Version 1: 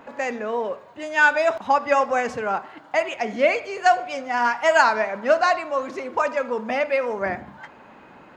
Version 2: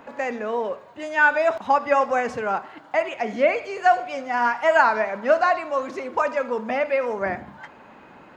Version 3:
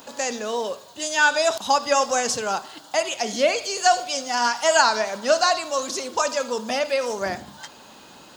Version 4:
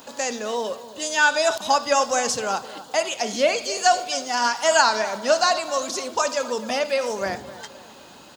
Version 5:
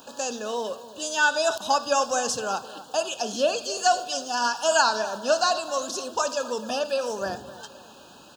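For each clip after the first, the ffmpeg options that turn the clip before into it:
ffmpeg -i in.wav -filter_complex "[0:a]acrossover=split=2500[link_01][link_02];[link_02]acompressor=threshold=-40dB:ratio=4:attack=1:release=60[link_03];[link_01][link_03]amix=inputs=2:normalize=0" out.wav
ffmpeg -i in.wav -af "aexciter=amount=11.1:drive=5.9:freq=3300,volume=-1dB" out.wav
ffmpeg -i in.wav -filter_complex "[0:a]asplit=2[link_01][link_02];[link_02]adelay=258,lowpass=frequency=2000:poles=1,volume=-15dB,asplit=2[link_03][link_04];[link_04]adelay=258,lowpass=frequency=2000:poles=1,volume=0.51,asplit=2[link_05][link_06];[link_06]adelay=258,lowpass=frequency=2000:poles=1,volume=0.51,asplit=2[link_07][link_08];[link_08]adelay=258,lowpass=frequency=2000:poles=1,volume=0.51,asplit=2[link_09][link_10];[link_10]adelay=258,lowpass=frequency=2000:poles=1,volume=0.51[link_11];[link_01][link_03][link_05][link_07][link_09][link_11]amix=inputs=6:normalize=0" out.wav
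ffmpeg -i in.wav -af "asuperstop=centerf=2100:order=12:qfactor=2.8,volume=-3dB" out.wav

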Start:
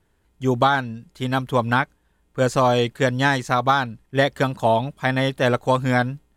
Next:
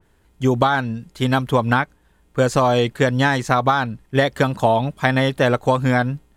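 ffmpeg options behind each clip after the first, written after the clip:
ffmpeg -i in.wav -af "acompressor=threshold=-19dB:ratio=6,adynamicequalizer=threshold=0.01:dfrequency=2600:dqfactor=0.7:tfrequency=2600:tqfactor=0.7:attack=5:release=100:ratio=0.375:range=1.5:mode=cutabove:tftype=highshelf,volume=6.5dB" out.wav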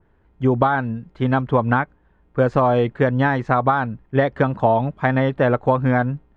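ffmpeg -i in.wav -af "lowpass=1700" out.wav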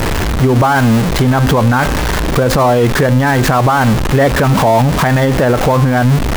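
ffmpeg -i in.wav -af "aeval=exprs='val(0)+0.5*0.0944*sgn(val(0))':channel_layout=same,bandreject=frequency=262.3:width_type=h:width=4,bandreject=frequency=524.6:width_type=h:width=4,bandreject=frequency=786.9:width_type=h:width=4,bandreject=frequency=1049.2:width_type=h:width=4,bandreject=frequency=1311.5:width_type=h:width=4,bandreject=frequency=1573.8:width_type=h:width=4,bandreject=frequency=1836.1:width_type=h:width=4,bandreject=frequency=2098.4:width_type=h:width=4,bandreject=frequency=2360.7:width_type=h:width=4,bandreject=frequency=2623:width_type=h:width=4,bandreject=frequency=2885.3:width_type=h:width=4,bandreject=frequency=3147.6:width_type=h:width=4,bandreject=frequency=3409.9:width_type=h:width=4,bandreject=frequency=3672.2:width_type=h:width=4,bandreject=frequency=3934.5:width_type=h:width=4,bandreject=frequency=4196.8:width_type=h:width=4,bandreject=frequency=4459.1:width_type=h:width=4,bandreject=frequency=4721.4:width_type=h:width=4,bandreject=frequency=4983.7:width_type=h:width=4,bandreject=frequency=5246:width_type=h:width=4,bandreject=frequency=5508.3:width_type=h:width=4,bandreject=frequency=5770.6:width_type=h:width=4,bandreject=frequency=6032.9:width_type=h:width=4,bandreject=frequency=6295.2:width_type=h:width=4,bandreject=frequency=6557.5:width_type=h:width=4,bandreject=frequency=6819.8:width_type=h:width=4,bandreject=frequency=7082.1:width_type=h:width=4,bandreject=frequency=7344.4:width_type=h:width=4,bandreject=frequency=7606.7:width_type=h:width=4,bandreject=frequency=7869:width_type=h:width=4,bandreject=frequency=8131.3:width_type=h:width=4,bandreject=frequency=8393.6:width_type=h:width=4,bandreject=frequency=8655.9:width_type=h:width=4,bandreject=frequency=8918.2:width_type=h:width=4,bandreject=frequency=9180.5:width_type=h:width=4,bandreject=frequency=9442.8:width_type=h:width=4,bandreject=frequency=9705.1:width_type=h:width=4,alimiter=level_in=14.5dB:limit=-1dB:release=50:level=0:latency=1,volume=-2.5dB" out.wav

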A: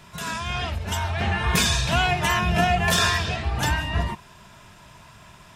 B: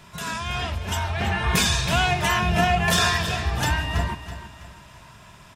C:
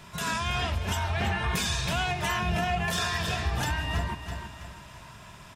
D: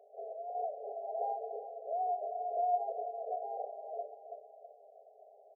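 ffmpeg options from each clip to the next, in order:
ffmpeg -i in.wav -af "aecho=1:1:327|654|981|1308:0.237|0.0949|0.0379|0.0152" out.wav
ffmpeg -i in.wav -af "alimiter=limit=-18.5dB:level=0:latency=1:release=353" out.wav
ffmpeg -i in.wav -af "afftfilt=real='re*between(b*sr/4096,400,810)':imag='im*between(b*sr/4096,400,810)':win_size=4096:overlap=0.75" out.wav

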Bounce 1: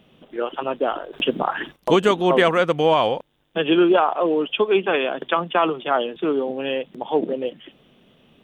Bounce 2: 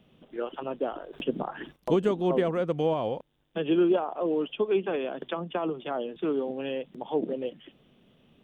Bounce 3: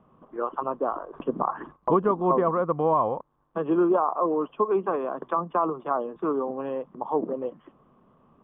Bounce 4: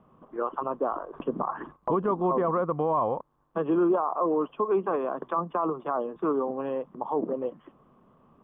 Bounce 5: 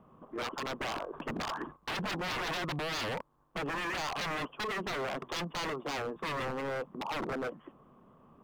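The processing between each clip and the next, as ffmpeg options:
ffmpeg -i in.wav -filter_complex "[0:a]lowshelf=frequency=300:gain=5.5,acrossover=split=700[link_01][link_02];[link_02]acompressor=threshold=-29dB:ratio=6[link_03];[link_01][link_03]amix=inputs=2:normalize=0,volume=-8.5dB" out.wav
ffmpeg -i in.wav -af "lowpass=frequency=1100:width_type=q:width=7.5" out.wav
ffmpeg -i in.wav -af "alimiter=limit=-17dB:level=0:latency=1:release=20" out.wav
ffmpeg -i in.wav -af "aeval=exprs='0.0316*(abs(mod(val(0)/0.0316+3,4)-2)-1)':channel_layout=same" out.wav

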